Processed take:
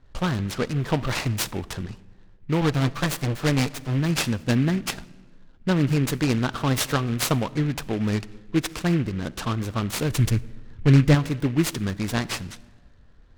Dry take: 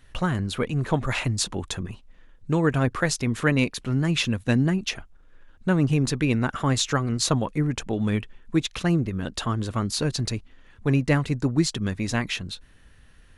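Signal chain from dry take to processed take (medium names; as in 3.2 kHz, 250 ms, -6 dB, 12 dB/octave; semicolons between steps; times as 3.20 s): 2.61–4.00 s: comb filter that takes the minimum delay 6.9 ms; level-controlled noise filter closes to 1.1 kHz, open at -21 dBFS; 10.10–11.15 s: bass shelf 180 Hz +12 dB; algorithmic reverb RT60 1.6 s, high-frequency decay 0.45×, pre-delay 5 ms, DRR 18.5 dB; delay time shaken by noise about 1.9 kHz, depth 0.064 ms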